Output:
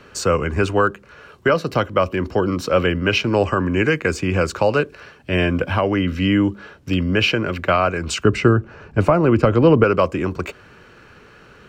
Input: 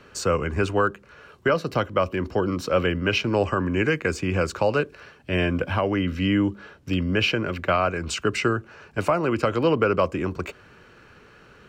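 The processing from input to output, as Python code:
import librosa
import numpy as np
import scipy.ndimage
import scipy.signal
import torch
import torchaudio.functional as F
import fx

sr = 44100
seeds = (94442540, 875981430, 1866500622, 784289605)

y = fx.tilt_eq(x, sr, slope=-2.5, at=(8.25, 9.84))
y = F.gain(torch.from_numpy(y), 4.5).numpy()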